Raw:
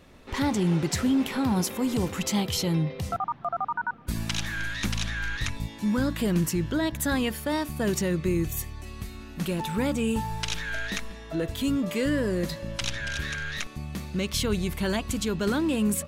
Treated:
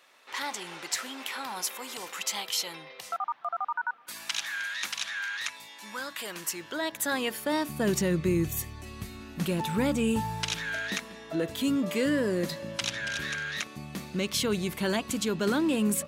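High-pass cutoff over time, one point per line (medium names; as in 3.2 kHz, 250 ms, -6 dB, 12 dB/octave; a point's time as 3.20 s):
6.20 s 940 Hz
7.33 s 340 Hz
8.03 s 84 Hz
10.27 s 84 Hz
10.99 s 180 Hz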